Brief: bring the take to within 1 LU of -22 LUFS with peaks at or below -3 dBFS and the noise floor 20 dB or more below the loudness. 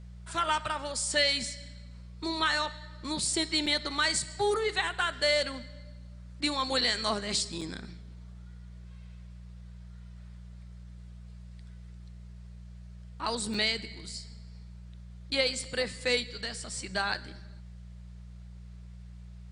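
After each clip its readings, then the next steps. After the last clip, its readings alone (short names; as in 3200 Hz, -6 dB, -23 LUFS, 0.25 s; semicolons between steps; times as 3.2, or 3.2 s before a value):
dropouts 4; longest dropout 4.8 ms; hum 60 Hz; harmonics up to 180 Hz; hum level -44 dBFS; loudness -29.5 LUFS; peak -15.5 dBFS; loudness target -22.0 LUFS
-> interpolate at 3.66/7.61/13.54/17.14, 4.8 ms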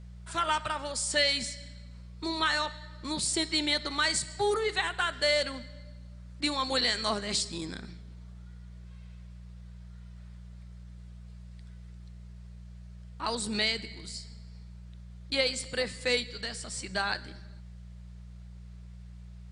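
dropouts 0; hum 60 Hz; harmonics up to 180 Hz; hum level -44 dBFS
-> de-hum 60 Hz, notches 3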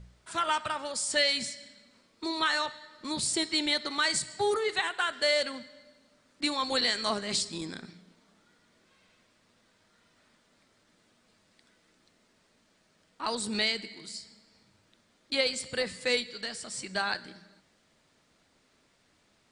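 hum none; loudness -29.5 LUFS; peak -16.0 dBFS; loudness target -22.0 LUFS
-> gain +7.5 dB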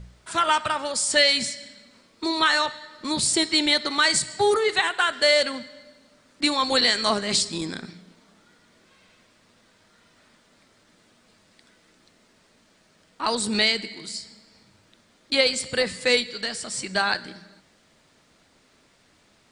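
loudness -22.0 LUFS; peak -8.5 dBFS; noise floor -61 dBFS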